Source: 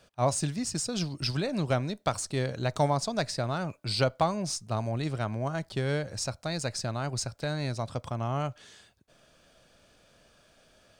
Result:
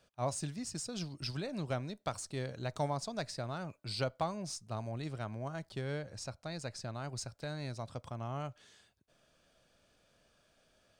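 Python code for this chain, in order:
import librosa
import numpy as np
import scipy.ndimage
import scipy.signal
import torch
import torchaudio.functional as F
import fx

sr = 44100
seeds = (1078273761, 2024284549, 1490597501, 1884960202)

y = fx.high_shelf(x, sr, hz=5900.0, db=-5.5, at=(5.81, 6.95))
y = F.gain(torch.from_numpy(y), -9.0).numpy()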